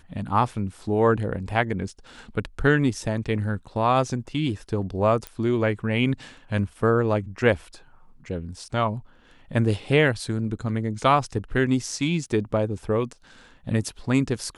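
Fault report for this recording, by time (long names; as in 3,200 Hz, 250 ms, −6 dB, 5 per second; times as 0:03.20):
0:05.27: click −17 dBFS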